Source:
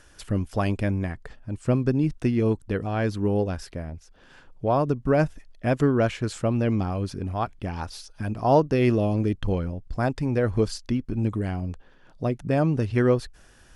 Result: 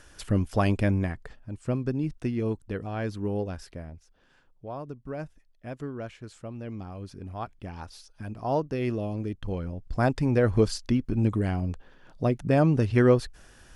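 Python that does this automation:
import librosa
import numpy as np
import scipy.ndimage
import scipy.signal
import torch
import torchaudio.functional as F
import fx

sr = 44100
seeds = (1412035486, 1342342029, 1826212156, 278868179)

y = fx.gain(x, sr, db=fx.line((0.97, 1.0), (1.57, -6.0), (3.83, -6.0), (4.66, -15.0), (6.55, -15.0), (7.42, -8.0), (9.43, -8.0), (10.02, 1.0)))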